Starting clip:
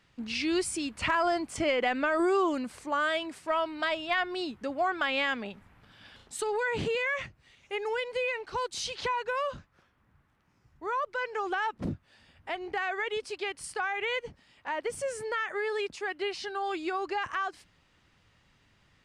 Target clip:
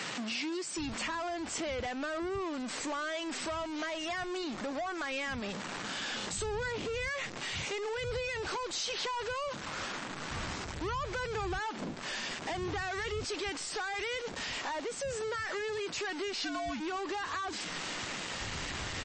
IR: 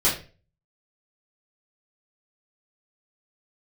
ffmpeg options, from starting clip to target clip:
-filter_complex "[0:a]aeval=exprs='val(0)+0.5*0.0251*sgn(val(0))':c=same,asettb=1/sr,asplit=3[a][b][c];[a]atrim=end=4.564[d];[b]atrim=start=4.56:end=5.13,asetpts=PTS-STARTPTS,afade=t=in:d=0.004:c=qsin,afade=t=out:st=0.566:d=0.004:c=qsin,equalizer=f=3.1k:w=3.2:g=-5[e];[c]atrim=start=5.126[f];[d][e]acrossfade=d=0.004:c1=hsin:c2=qsin[g];[g][f]acrossfade=d=0.004:c1=qsin:c2=hsin,asettb=1/sr,asplit=3[h][i][j];[h]atrim=end=14.164[k];[i]atrim=start=14.16:end=15.49,asetpts=PTS-STARTPTS,afade=t=in:d=0.004:c=qsin,afade=t=out:st=1.326:d=0.004:c=qsin,highpass=f=120:p=1[l];[j]atrim=start=15.486[m];[k][l]acrossfade=d=0.004:c1=hsin:c2=qsin[n];[n][m]acrossfade=d=0.004:c1=qsin:c2=hsin,acompressor=threshold=-32dB:ratio=6,asoftclip=type=tanh:threshold=-32.5dB,asplit=3[o][p][q];[o]afade=t=out:st=16.32:d=0.02[r];[p]afreqshift=-100,afade=t=in:st=16.32:d=0.02,afade=t=out:st=16.79:d=0.02[s];[q]afade=t=in:st=16.79:d=0.02[t];[r][s][t]amix=inputs=3:normalize=0,acrossover=split=160[u][v];[u]adelay=770[w];[w][v]amix=inputs=2:normalize=0,volume=1.5dB" -ar 22050 -c:a libmp3lame -b:a 32k

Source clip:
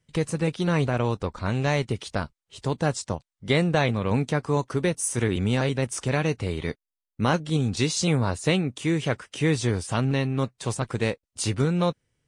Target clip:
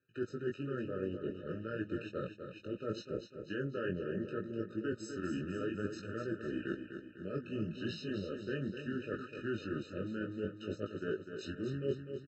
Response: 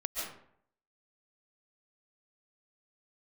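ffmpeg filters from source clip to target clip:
-filter_complex "[0:a]highpass=290,lowpass=3k,areverse,acompressor=threshold=-35dB:ratio=8,areverse,asetrate=35002,aresample=44100,atempo=1.25992,flanger=delay=18:depth=4.1:speed=0.64,asplit=2[a][b];[b]aecho=0:1:250|500|750|1000|1250|1500:0.398|0.195|0.0956|0.0468|0.023|0.0112[c];[a][c]amix=inputs=2:normalize=0,afftfilt=real='re*eq(mod(floor(b*sr/1024/610),2),0)':imag='im*eq(mod(floor(b*sr/1024/610),2),0)':win_size=1024:overlap=0.75,volume=4dB"

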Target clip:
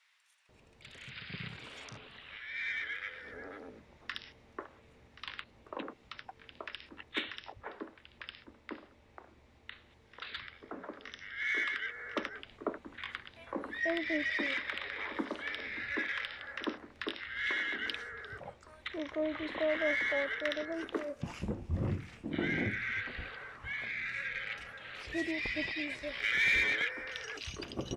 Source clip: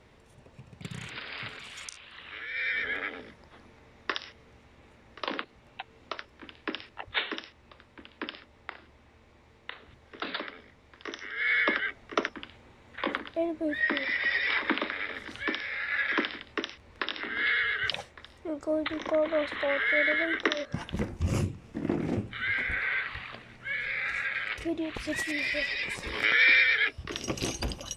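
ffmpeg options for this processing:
-filter_complex "[0:a]acrossover=split=5000[a][b];[b]acompressor=threshold=-60dB:ratio=4:attack=1:release=60[c];[a][c]amix=inputs=2:normalize=0,asplit=2[d][e];[e]asoftclip=type=tanh:threshold=-23.5dB,volume=-5.5dB[f];[d][f]amix=inputs=2:normalize=0,acrossover=split=1300[g][h];[g]adelay=490[i];[i][h]amix=inputs=2:normalize=0,volume=-8dB"

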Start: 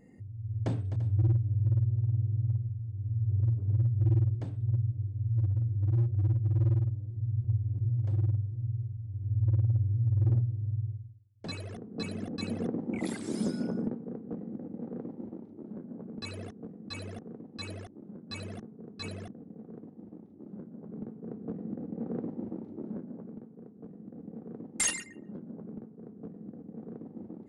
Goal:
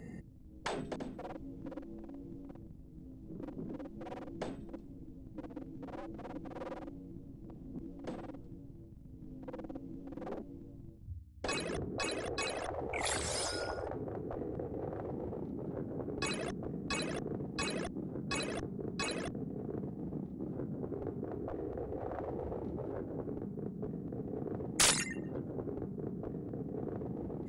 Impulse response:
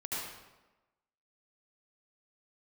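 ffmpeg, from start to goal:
-af "afftfilt=real='re*lt(hypot(re,im),0.0447)':imag='im*lt(hypot(re,im),0.0447)':win_size=1024:overlap=0.75,afreqshift=-26,aeval=exprs='val(0)+0.000355*(sin(2*PI*60*n/s)+sin(2*PI*2*60*n/s)/2+sin(2*PI*3*60*n/s)/3+sin(2*PI*4*60*n/s)/4+sin(2*PI*5*60*n/s)/5)':c=same,volume=9.5dB"

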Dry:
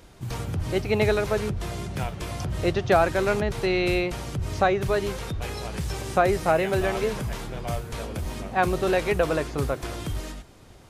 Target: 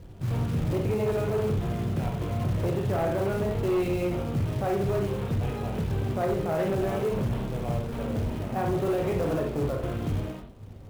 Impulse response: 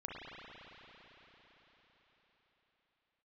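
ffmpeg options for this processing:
-filter_complex "[0:a]equalizer=f=125:t=o:w=1:g=9,equalizer=f=250:t=o:w=1:g=5,equalizer=f=500:t=o:w=1:g=5,equalizer=f=2k:t=o:w=1:g=-7,asplit=2[a][b];[b]acrusher=bits=4:mix=0:aa=0.000001,volume=-10dB[c];[a][c]amix=inputs=2:normalize=0,alimiter=limit=-13.5dB:level=0:latency=1:release=27,acrossover=split=150[d][e];[d]acompressor=mode=upward:threshold=-30dB:ratio=2.5[f];[e]lowpass=f=3.1k:w=0.5412,lowpass=f=3.1k:w=1.3066[g];[f][g]amix=inputs=2:normalize=0,bandreject=f=66.63:t=h:w=4,bandreject=f=133.26:t=h:w=4,bandreject=f=199.89:t=h:w=4,bandreject=f=266.52:t=h:w=4,bandreject=f=333.15:t=h:w=4,bandreject=f=399.78:t=h:w=4,bandreject=f=466.41:t=h:w=4,bandreject=f=533.04:t=h:w=4,bandreject=f=599.67:t=h:w=4,bandreject=f=666.3:t=h:w=4,bandreject=f=732.93:t=h:w=4,bandreject=f=799.56:t=h:w=4,bandreject=f=866.19:t=h:w=4,bandreject=f=932.82:t=h:w=4,bandreject=f=999.45:t=h:w=4,bandreject=f=1.06608k:t=h:w=4,bandreject=f=1.13271k:t=h:w=4,bandreject=f=1.19934k:t=h:w=4,bandreject=f=1.26597k:t=h:w=4,bandreject=f=1.3326k:t=h:w=4,bandreject=f=1.39923k:t=h:w=4,bandreject=f=1.46586k:t=h:w=4,bandreject=f=1.53249k:t=h:w=4,bandreject=f=1.59912k:t=h:w=4,bandreject=f=1.66575k:t=h:w=4,bandreject=f=1.73238k:t=h:w=4,bandreject=f=1.79901k:t=h:w=4,bandreject=f=1.86564k:t=h:w=4,acrusher=bits=5:mode=log:mix=0:aa=0.000001[h];[1:a]atrim=start_sample=2205,afade=t=out:st=0.15:d=0.01,atrim=end_sample=7056,asetrate=48510,aresample=44100[i];[h][i]afir=irnorm=-1:irlink=0,asoftclip=type=hard:threshold=-21.5dB"

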